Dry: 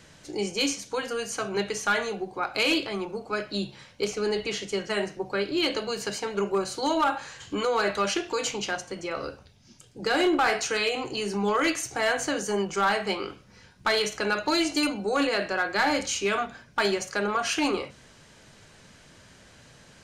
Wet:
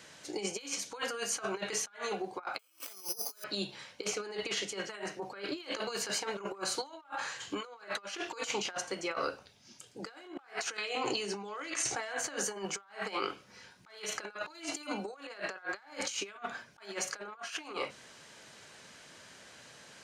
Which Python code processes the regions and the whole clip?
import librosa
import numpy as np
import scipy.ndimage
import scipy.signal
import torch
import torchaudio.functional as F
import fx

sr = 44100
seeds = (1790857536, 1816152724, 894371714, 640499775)

y = fx.chain(x, sr, fx.highpass(hz=300.0, slope=6),
    fx.resample_bad(factor=8, down='none', up='zero_stuff'), at=(2.59, 3.44))
y = fx.chain(y, sr, fx.over_compress(threshold_db=-36.0, ratio=-1.0),
    fx.lowpass(hz=8900.0, slope=12),
    fx.resample_bad(factor=2, down='none', up='filtered'), at=(10.77, 12.19))
y = fx.highpass(y, sr, hz=460.0, slope=6)
y = fx.dynamic_eq(y, sr, hz=1200.0, q=0.94, threshold_db=-40.0, ratio=4.0, max_db=5)
y = fx.over_compress(y, sr, threshold_db=-33.0, ratio=-0.5)
y = y * librosa.db_to_amplitude(-5.5)